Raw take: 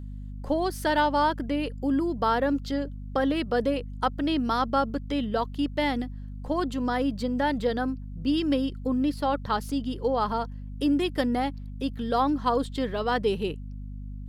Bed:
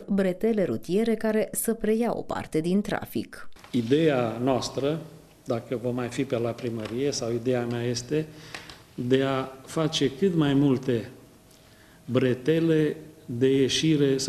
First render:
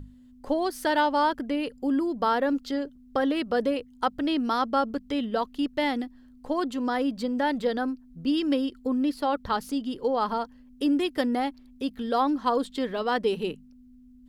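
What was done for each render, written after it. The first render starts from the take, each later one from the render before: notches 50/100/150/200 Hz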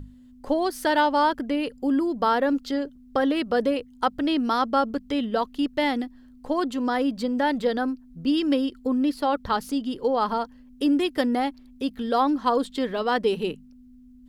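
gain +2.5 dB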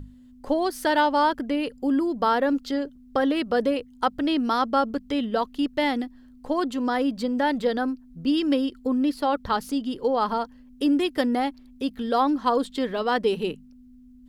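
nothing audible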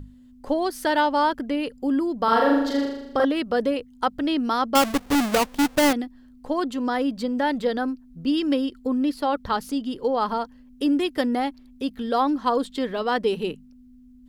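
2.24–3.25 flutter echo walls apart 6.8 m, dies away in 0.89 s; 4.75–5.93 half-waves squared off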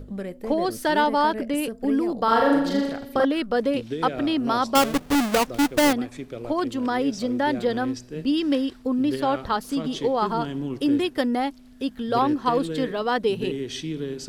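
add bed -8.5 dB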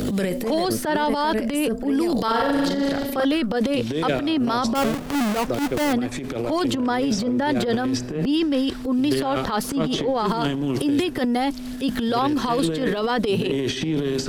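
transient shaper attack -11 dB, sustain +11 dB; three-band squash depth 100%

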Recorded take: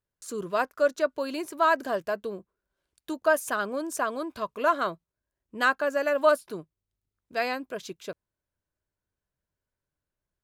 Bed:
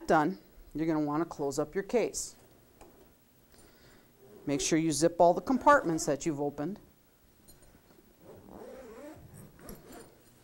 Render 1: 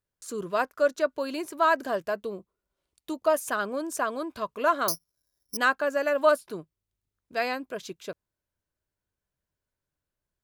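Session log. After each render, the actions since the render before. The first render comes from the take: 2.21–3.34 notch 1600 Hz, Q 5.3; 4.88–5.57 careless resampling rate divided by 8×, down filtered, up zero stuff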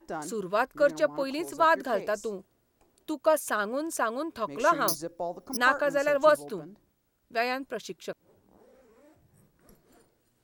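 add bed -11 dB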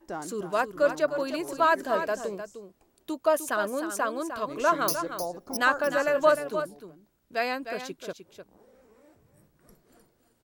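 echo 0.305 s -9.5 dB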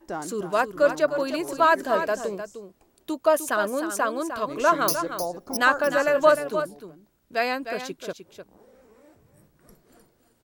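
gain +3.5 dB

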